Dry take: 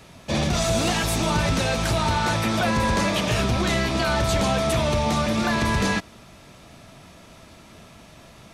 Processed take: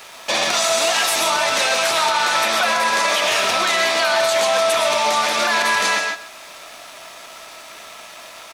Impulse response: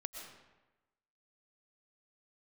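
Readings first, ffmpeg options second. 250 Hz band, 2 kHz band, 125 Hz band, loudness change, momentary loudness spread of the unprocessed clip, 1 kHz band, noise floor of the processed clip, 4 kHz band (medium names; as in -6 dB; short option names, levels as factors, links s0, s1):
-11.0 dB, +8.5 dB, -22.0 dB, +5.5 dB, 1 LU, +7.0 dB, -40 dBFS, +9.0 dB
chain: -filter_complex "[0:a]highpass=780,asplit=2[s0][s1];[s1]acompressor=threshold=0.0126:ratio=6,volume=1.26[s2];[s0][s2]amix=inputs=2:normalize=0,aeval=exprs='sgn(val(0))*max(abs(val(0))-0.00251,0)':c=same,aecho=1:1:130:0.178[s3];[1:a]atrim=start_sample=2205,afade=t=out:st=0.21:d=0.01,atrim=end_sample=9702[s4];[s3][s4]afir=irnorm=-1:irlink=0,alimiter=level_in=8.91:limit=0.891:release=50:level=0:latency=1,volume=0.422"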